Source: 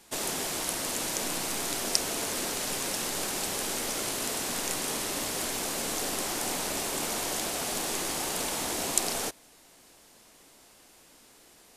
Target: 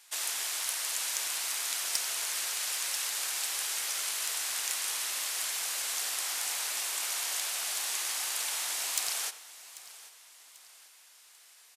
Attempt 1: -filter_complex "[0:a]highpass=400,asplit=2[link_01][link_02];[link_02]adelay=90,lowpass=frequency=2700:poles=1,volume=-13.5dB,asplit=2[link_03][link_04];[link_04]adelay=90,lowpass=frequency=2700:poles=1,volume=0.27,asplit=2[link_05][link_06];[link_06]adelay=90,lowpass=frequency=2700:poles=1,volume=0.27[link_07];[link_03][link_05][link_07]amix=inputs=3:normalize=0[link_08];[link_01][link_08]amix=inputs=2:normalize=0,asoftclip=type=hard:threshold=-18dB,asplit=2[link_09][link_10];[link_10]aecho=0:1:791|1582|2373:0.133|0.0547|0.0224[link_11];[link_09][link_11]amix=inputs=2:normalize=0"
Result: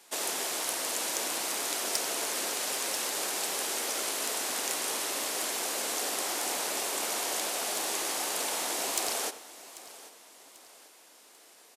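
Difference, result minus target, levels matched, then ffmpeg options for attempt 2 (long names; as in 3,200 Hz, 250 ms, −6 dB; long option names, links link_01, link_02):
500 Hz band +14.5 dB
-filter_complex "[0:a]highpass=1400,asplit=2[link_01][link_02];[link_02]adelay=90,lowpass=frequency=2700:poles=1,volume=-13.5dB,asplit=2[link_03][link_04];[link_04]adelay=90,lowpass=frequency=2700:poles=1,volume=0.27,asplit=2[link_05][link_06];[link_06]adelay=90,lowpass=frequency=2700:poles=1,volume=0.27[link_07];[link_03][link_05][link_07]amix=inputs=3:normalize=0[link_08];[link_01][link_08]amix=inputs=2:normalize=0,asoftclip=type=hard:threshold=-18dB,asplit=2[link_09][link_10];[link_10]aecho=0:1:791|1582|2373:0.133|0.0547|0.0224[link_11];[link_09][link_11]amix=inputs=2:normalize=0"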